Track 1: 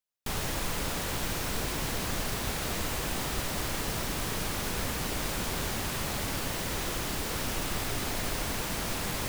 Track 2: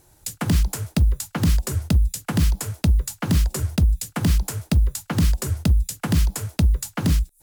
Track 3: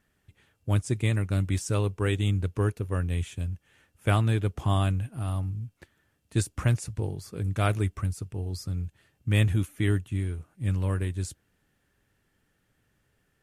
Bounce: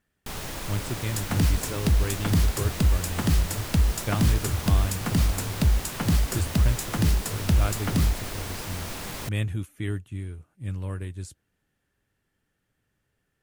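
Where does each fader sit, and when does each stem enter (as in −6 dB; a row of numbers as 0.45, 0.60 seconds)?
−2.5, −3.5, −5.0 decibels; 0.00, 0.90, 0.00 seconds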